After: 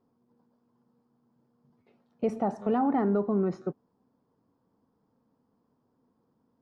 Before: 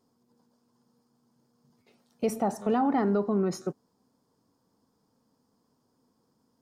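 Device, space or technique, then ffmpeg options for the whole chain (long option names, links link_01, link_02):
phone in a pocket: -filter_complex "[0:a]lowpass=3200,highshelf=frequency=2100:gain=-8.5,asettb=1/sr,asplit=3[link_01][link_02][link_03];[link_01]atrim=end=2.294[link_04];[link_02]atrim=start=2.29:end=2.78,asetpts=PTS-STARTPTS,afade=type=in:duration=0.004:curve=qsin,afade=type=out:start_time=0.486:duration=0.004:curve=qsin,aemphasis=mode=production:type=cd[link_05];[link_03]atrim=start=2.776[link_06];[link_04][link_05]acrossfade=duration=0.004:curve1=hsin:curve2=qsin[link_07];[link_07][link_06]acrossfade=duration=0.004:curve1=qsin:curve2=hsin"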